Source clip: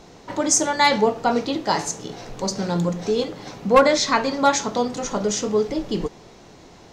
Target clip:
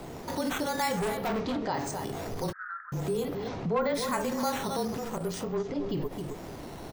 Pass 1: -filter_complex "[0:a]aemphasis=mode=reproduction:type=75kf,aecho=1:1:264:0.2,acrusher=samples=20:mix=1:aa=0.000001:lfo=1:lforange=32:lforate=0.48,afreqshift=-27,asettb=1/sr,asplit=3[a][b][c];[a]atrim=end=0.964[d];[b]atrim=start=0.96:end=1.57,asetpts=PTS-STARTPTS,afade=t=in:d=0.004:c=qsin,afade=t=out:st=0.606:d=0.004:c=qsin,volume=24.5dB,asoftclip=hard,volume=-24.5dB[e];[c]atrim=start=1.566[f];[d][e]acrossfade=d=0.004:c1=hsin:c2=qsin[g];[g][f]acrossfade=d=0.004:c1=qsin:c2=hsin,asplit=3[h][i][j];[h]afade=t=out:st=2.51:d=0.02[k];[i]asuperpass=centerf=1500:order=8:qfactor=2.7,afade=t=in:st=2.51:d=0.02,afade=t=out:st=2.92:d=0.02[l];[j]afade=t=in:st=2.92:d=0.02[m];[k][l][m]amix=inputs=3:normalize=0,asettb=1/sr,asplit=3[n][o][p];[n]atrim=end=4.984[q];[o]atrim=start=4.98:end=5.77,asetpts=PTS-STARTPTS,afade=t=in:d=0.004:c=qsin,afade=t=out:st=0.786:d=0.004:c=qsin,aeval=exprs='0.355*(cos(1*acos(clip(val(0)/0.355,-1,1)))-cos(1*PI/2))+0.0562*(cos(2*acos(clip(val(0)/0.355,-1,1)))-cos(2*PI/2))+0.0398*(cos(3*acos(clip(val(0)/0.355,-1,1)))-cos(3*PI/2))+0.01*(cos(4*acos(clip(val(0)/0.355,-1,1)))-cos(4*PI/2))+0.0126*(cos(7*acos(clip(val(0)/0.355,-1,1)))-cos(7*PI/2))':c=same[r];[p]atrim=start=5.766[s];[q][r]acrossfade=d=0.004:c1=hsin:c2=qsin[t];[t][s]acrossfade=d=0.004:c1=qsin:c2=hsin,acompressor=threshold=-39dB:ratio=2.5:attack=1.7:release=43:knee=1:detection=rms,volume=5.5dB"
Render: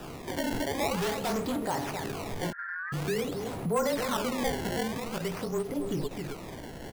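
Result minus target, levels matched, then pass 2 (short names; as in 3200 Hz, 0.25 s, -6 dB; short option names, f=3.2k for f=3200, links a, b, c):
decimation with a swept rate: distortion +11 dB
-filter_complex "[0:a]aemphasis=mode=reproduction:type=75kf,aecho=1:1:264:0.2,acrusher=samples=5:mix=1:aa=0.000001:lfo=1:lforange=8:lforate=0.48,afreqshift=-27,asettb=1/sr,asplit=3[a][b][c];[a]atrim=end=0.964[d];[b]atrim=start=0.96:end=1.57,asetpts=PTS-STARTPTS,afade=t=in:d=0.004:c=qsin,afade=t=out:st=0.606:d=0.004:c=qsin,volume=24.5dB,asoftclip=hard,volume=-24.5dB[e];[c]atrim=start=1.566[f];[d][e]acrossfade=d=0.004:c1=hsin:c2=qsin[g];[g][f]acrossfade=d=0.004:c1=qsin:c2=hsin,asplit=3[h][i][j];[h]afade=t=out:st=2.51:d=0.02[k];[i]asuperpass=centerf=1500:order=8:qfactor=2.7,afade=t=in:st=2.51:d=0.02,afade=t=out:st=2.92:d=0.02[l];[j]afade=t=in:st=2.92:d=0.02[m];[k][l][m]amix=inputs=3:normalize=0,asettb=1/sr,asplit=3[n][o][p];[n]atrim=end=4.984[q];[o]atrim=start=4.98:end=5.77,asetpts=PTS-STARTPTS,afade=t=in:d=0.004:c=qsin,afade=t=out:st=0.786:d=0.004:c=qsin,aeval=exprs='0.355*(cos(1*acos(clip(val(0)/0.355,-1,1)))-cos(1*PI/2))+0.0562*(cos(2*acos(clip(val(0)/0.355,-1,1)))-cos(2*PI/2))+0.0398*(cos(3*acos(clip(val(0)/0.355,-1,1)))-cos(3*PI/2))+0.01*(cos(4*acos(clip(val(0)/0.355,-1,1)))-cos(4*PI/2))+0.0126*(cos(7*acos(clip(val(0)/0.355,-1,1)))-cos(7*PI/2))':c=same[r];[p]atrim=start=5.766[s];[q][r]acrossfade=d=0.004:c1=hsin:c2=qsin[t];[t][s]acrossfade=d=0.004:c1=qsin:c2=hsin,acompressor=threshold=-39dB:ratio=2.5:attack=1.7:release=43:knee=1:detection=rms,volume=5.5dB"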